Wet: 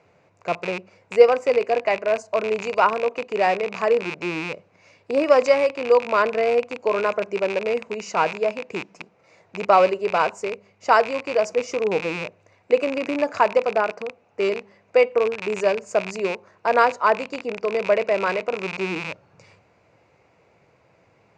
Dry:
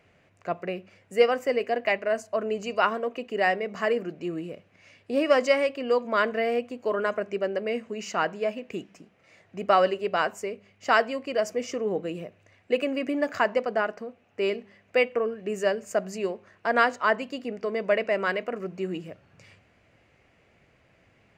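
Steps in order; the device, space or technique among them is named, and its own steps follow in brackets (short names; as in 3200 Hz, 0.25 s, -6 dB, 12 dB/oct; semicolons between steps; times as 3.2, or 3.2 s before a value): car door speaker with a rattle (rattling part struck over -45 dBFS, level -19 dBFS; speaker cabinet 100–7500 Hz, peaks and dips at 240 Hz -6 dB, 480 Hz +4 dB, 930 Hz +7 dB, 1800 Hz -7 dB, 3100 Hz -9 dB); gain +3.5 dB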